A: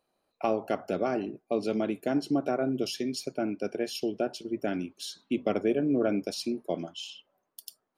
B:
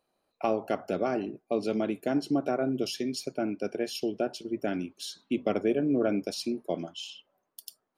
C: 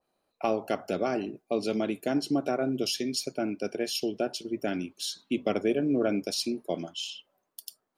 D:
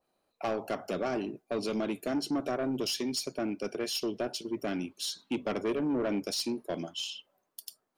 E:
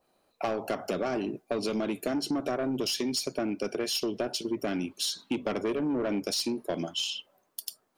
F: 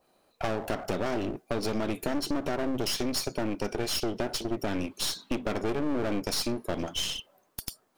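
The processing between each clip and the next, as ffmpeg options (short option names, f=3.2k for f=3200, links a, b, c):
-af anull
-af "adynamicequalizer=threshold=0.00398:dfrequency=2400:dqfactor=0.7:tfrequency=2400:tqfactor=0.7:attack=5:release=100:ratio=0.375:range=3:mode=boostabove:tftype=highshelf"
-af "asoftclip=type=tanh:threshold=-25dB"
-af "acompressor=threshold=-34dB:ratio=6,volume=7dB"
-af "aeval=exprs='clip(val(0),-1,0.00794)':c=same,volume=3.5dB"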